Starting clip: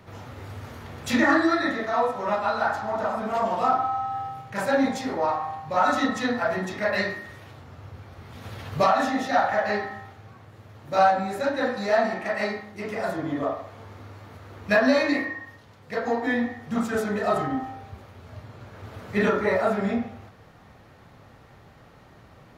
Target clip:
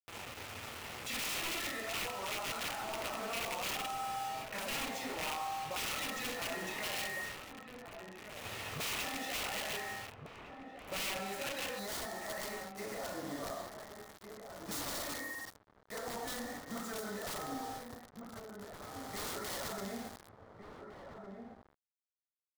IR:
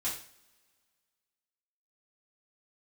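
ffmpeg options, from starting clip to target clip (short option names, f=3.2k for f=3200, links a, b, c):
-filter_complex "[0:a]lowshelf=f=260:g=-12,asplit=2[a][b];[b]adelay=36,volume=-12.5dB[c];[a][c]amix=inputs=2:normalize=0,aeval=exprs='(mod(11.2*val(0)+1,2)-1)/11.2':c=same,bandreject=f=1.6k:w=14,alimiter=level_in=6dB:limit=-24dB:level=0:latency=1:release=132,volume=-6dB,acrusher=bits=6:mix=0:aa=0.000001,asetnsamples=n=441:p=0,asendcmd='11.79 equalizer g -8.5',equalizer=f=2.6k:t=o:w=0.58:g=6,asplit=2[d][e];[e]adelay=1458,volume=-6dB,highshelf=f=4k:g=-32.8[f];[d][f]amix=inputs=2:normalize=0,volume=-3.5dB"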